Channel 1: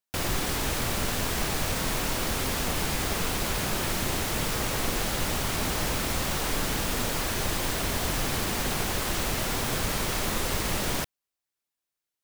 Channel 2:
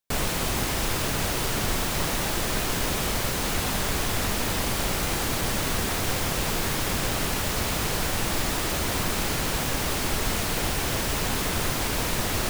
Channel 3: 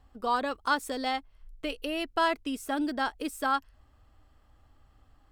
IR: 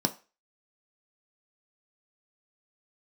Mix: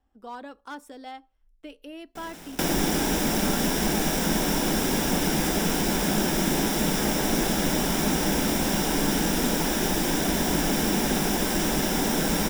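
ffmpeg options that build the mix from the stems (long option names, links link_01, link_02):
-filter_complex "[0:a]acrusher=bits=4:mix=0:aa=0.000001,adelay=2450,volume=1dB,asplit=2[link_01][link_02];[link_02]volume=-10.5dB[link_03];[1:a]asoftclip=type=tanh:threshold=-28dB,adelay=2050,volume=-15dB,asplit=2[link_04][link_05];[link_05]volume=-14dB[link_06];[2:a]asoftclip=type=hard:threshold=-20dB,volume=-13dB,asplit=2[link_07][link_08];[link_08]volume=-15.5dB[link_09];[3:a]atrim=start_sample=2205[link_10];[link_03][link_06][link_09]amix=inputs=3:normalize=0[link_11];[link_11][link_10]afir=irnorm=-1:irlink=0[link_12];[link_01][link_04][link_07][link_12]amix=inputs=4:normalize=0,acrossover=split=480[link_13][link_14];[link_14]acompressor=threshold=-26dB:ratio=3[link_15];[link_13][link_15]amix=inputs=2:normalize=0"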